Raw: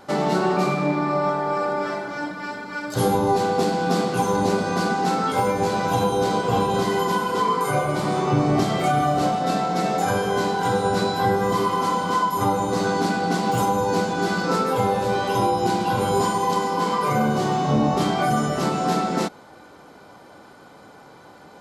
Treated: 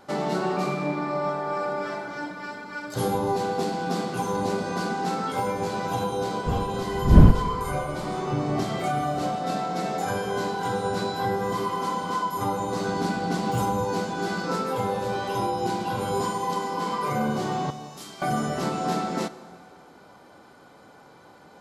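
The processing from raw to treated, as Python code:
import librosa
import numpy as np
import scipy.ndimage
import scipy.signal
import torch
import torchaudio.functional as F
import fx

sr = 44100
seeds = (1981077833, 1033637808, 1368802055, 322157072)

y = fx.dmg_wind(x, sr, seeds[0], corner_hz=140.0, level_db=-17.0, at=(6.46, 7.31), fade=0.02)
y = fx.pre_emphasis(y, sr, coefficient=0.9, at=(17.7, 18.22))
y = fx.rev_plate(y, sr, seeds[1], rt60_s=2.2, hf_ratio=0.8, predelay_ms=0, drr_db=14.0)
y = fx.rider(y, sr, range_db=3, speed_s=2.0)
y = fx.low_shelf(y, sr, hz=110.0, db=11.0, at=(12.88, 13.85))
y = y * 10.0 ** (-7.0 / 20.0)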